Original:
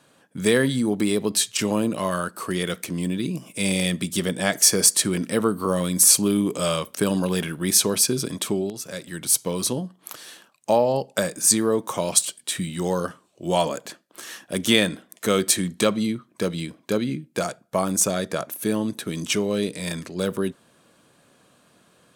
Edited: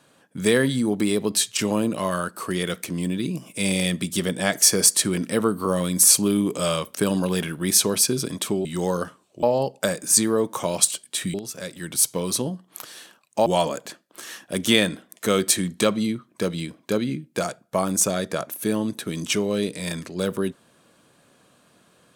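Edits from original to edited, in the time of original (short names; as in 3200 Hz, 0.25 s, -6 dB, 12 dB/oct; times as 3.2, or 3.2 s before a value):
8.65–10.77 swap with 12.68–13.46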